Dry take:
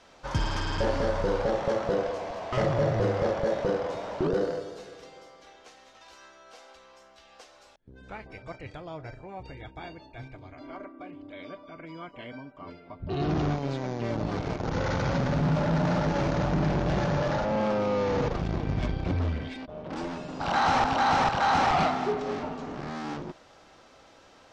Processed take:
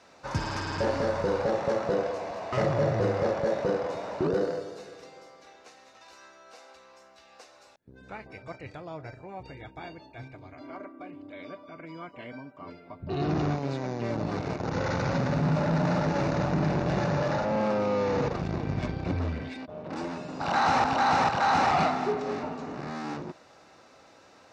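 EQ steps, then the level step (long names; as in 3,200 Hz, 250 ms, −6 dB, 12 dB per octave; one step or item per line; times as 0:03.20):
high-pass filter 85 Hz
notch filter 3,200 Hz, Q 7.9
0.0 dB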